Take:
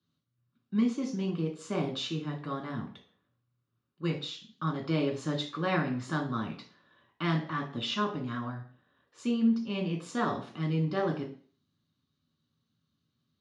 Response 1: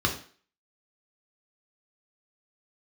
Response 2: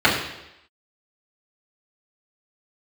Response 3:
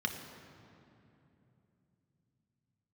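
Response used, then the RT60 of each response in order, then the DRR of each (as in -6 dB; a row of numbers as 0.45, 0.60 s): 1; 0.45, 0.85, 3.0 s; 1.5, -9.0, 3.5 dB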